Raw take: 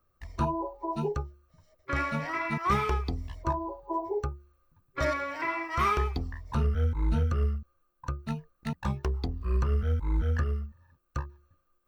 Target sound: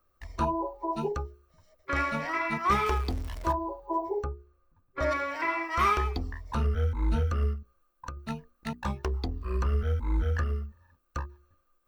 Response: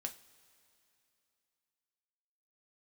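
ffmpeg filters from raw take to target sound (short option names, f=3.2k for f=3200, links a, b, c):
-filter_complex "[0:a]asettb=1/sr,asplit=3[a][b][c];[a]atrim=end=2.864[d];[b]atrim=start=2.86:end=3.52,asetpts=PTS-STARTPTS,afade=t=in:d=0.004:c=qsin,afade=t=out:st=0.656:d=0.004:c=qsin,aeval=exprs='val(0)+0.5*0.0106*sgn(val(0))':c=same[e];[c]atrim=start=3.516[f];[d][e]acrossfade=d=0.004:c1=hsin:c2=qsin[g];[g][f]acrossfade=d=0.004:c1=qsin:c2=hsin,asplit=3[h][i][j];[h]afade=t=out:st=4.22:d=0.02[k];[i]highshelf=f=2k:g=-10,afade=t=in:st=4.22:d=0.02,afade=t=out:st=5.1:d=0.02[l];[j]afade=t=in:st=5.1:d=0.02[m];[k][l][m]amix=inputs=3:normalize=0,asettb=1/sr,asplit=3[n][o][p];[n]atrim=end=7.534[q];[o]atrim=start=7.53:end=8.17,asetpts=PTS-STARTPTS,afade=t=in:d=0.004:c=qsin,afade=t=out:st=0.636:d=0.004:c=qsin,acompressor=threshold=-34dB:ratio=6[r];[p]atrim=start=8.166[s];[q][r]acrossfade=d=0.004:c1=hsin:c2=qsin[t];[t][s]acrossfade=d=0.004:c1=qsin:c2=hsin,equalizer=f=130:w=1.6:g=-9,bandreject=f=60:t=h:w=6,bandreject=f=120:t=h:w=6,bandreject=f=180:t=h:w=6,bandreject=f=240:t=h:w=6,bandreject=f=300:t=h:w=6,bandreject=f=360:t=h:w=6,bandreject=f=420:t=h:w=6,volume=2dB"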